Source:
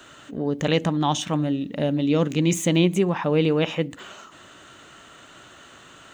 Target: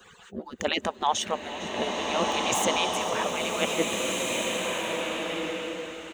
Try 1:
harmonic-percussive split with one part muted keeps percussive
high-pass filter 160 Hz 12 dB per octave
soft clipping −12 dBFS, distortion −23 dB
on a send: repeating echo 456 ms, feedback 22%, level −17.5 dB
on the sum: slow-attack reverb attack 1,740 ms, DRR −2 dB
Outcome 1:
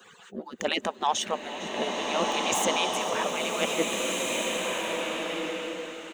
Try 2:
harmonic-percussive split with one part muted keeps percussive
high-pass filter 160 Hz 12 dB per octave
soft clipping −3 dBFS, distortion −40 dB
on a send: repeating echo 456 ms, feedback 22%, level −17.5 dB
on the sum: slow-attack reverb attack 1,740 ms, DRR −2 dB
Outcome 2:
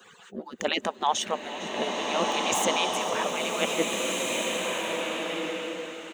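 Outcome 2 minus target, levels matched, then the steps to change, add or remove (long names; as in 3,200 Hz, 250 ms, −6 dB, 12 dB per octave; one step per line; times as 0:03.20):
125 Hz band −3.0 dB
remove: high-pass filter 160 Hz 12 dB per octave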